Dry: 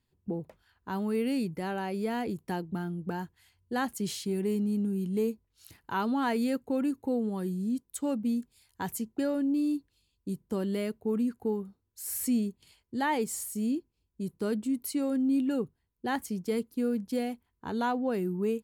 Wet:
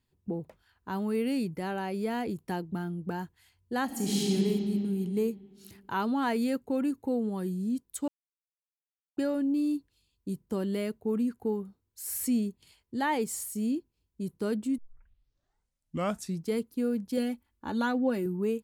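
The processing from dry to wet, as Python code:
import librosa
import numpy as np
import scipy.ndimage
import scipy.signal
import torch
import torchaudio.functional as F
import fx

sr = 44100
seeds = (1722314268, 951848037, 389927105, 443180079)

y = fx.reverb_throw(x, sr, start_s=3.85, length_s=0.46, rt60_s=2.7, drr_db=-5.5)
y = fx.comb(y, sr, ms=3.5, depth=0.65, at=(17.17, 18.26))
y = fx.edit(y, sr, fx.silence(start_s=8.08, length_s=1.09),
    fx.tape_start(start_s=14.78, length_s=1.75), tone=tone)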